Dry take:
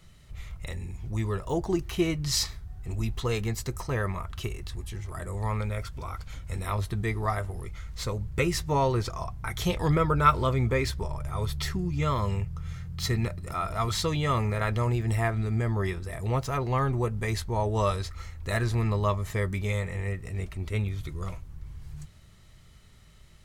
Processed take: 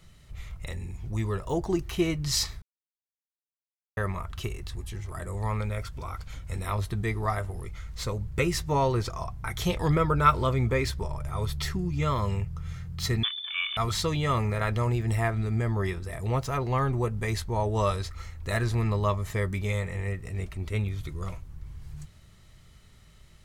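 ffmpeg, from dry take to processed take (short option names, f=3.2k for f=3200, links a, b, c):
-filter_complex "[0:a]asettb=1/sr,asplit=3[a][b][c];[a]atrim=end=13.234[d];[b]atrim=start=13.23:end=13.77,asetpts=PTS-STARTPTS,afade=t=in:d=0.004:c=qsin,afade=t=out:st=0.536:d=0.004:c=qsin,lowpass=f=3.1k:t=q:w=0.5098,lowpass=f=3.1k:t=q:w=0.6013,lowpass=f=3.1k:t=q:w=0.9,lowpass=f=3.1k:t=q:w=2.563,afreqshift=-3600[e];[c]atrim=start=13.766[f];[d][e]acrossfade=d=0.004:c1=hsin:c2=qsin[g];[g][f]acrossfade=d=0.004:c1=qsin:c2=hsin,asplit=3[h][i][j];[h]atrim=end=2.62,asetpts=PTS-STARTPTS,afade=t=out:st=2.616:d=0.004:c=hsin[k];[i]atrim=start=2.62:end=3.97,asetpts=PTS-STARTPTS,volume=0[l];[j]atrim=start=3.97,asetpts=PTS-STARTPTS,afade=t=in:d=0.004:c=hsin[m];[k][l][m]concat=n=3:v=0:a=1"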